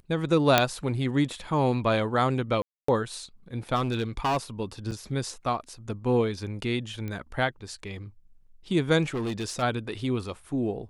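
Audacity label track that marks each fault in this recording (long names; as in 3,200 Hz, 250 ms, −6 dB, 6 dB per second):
0.580000	0.580000	click −3 dBFS
2.620000	2.880000	drop-out 264 ms
3.750000	4.380000	clipping −22 dBFS
4.910000	4.920000	drop-out 6.1 ms
7.080000	7.080000	click −22 dBFS
9.080000	9.630000	clipping −26.5 dBFS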